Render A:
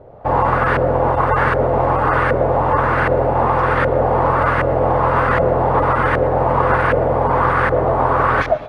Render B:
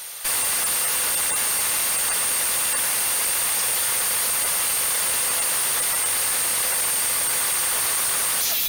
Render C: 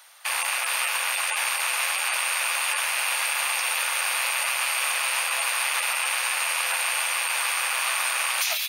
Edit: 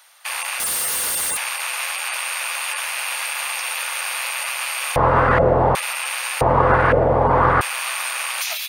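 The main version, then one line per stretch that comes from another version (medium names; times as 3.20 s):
C
0.60–1.37 s: from B
4.96–5.75 s: from A
6.41–7.61 s: from A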